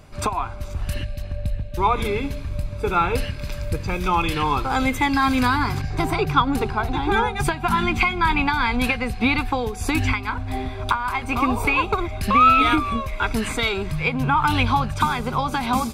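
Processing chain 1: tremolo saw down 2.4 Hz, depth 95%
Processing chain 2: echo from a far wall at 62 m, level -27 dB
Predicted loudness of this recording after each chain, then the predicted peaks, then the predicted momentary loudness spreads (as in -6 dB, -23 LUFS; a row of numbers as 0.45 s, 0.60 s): -26.0 LUFS, -22.0 LUFS; -7.0 dBFS, -4.0 dBFS; 11 LU, 10 LU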